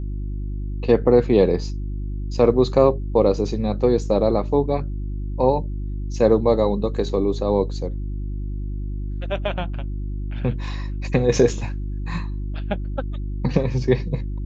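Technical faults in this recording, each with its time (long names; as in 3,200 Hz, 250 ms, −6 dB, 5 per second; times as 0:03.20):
mains hum 50 Hz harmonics 7 −27 dBFS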